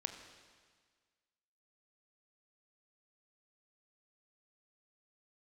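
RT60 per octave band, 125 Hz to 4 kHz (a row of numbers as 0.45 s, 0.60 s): 1.6 s, 1.7 s, 1.6 s, 1.7 s, 1.6 s, 1.6 s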